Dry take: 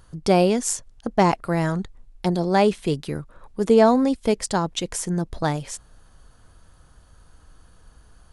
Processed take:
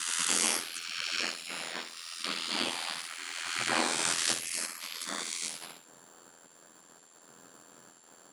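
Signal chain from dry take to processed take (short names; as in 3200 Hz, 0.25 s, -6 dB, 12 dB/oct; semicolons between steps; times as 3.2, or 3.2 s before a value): spectral swells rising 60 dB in 2.66 s; notches 50/100/150/200/250/300/350 Hz; spectral gate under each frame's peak -25 dB weak; Chebyshev high-pass 170 Hz, order 6; low shelf 490 Hz +7 dB; on a send: flutter echo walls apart 11.2 m, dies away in 0.44 s; on the sum: whine 7300 Hz -56 dBFS; in parallel at -8.5 dB: requantised 8-bit, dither none; on the sum: ring modulator 42 Hz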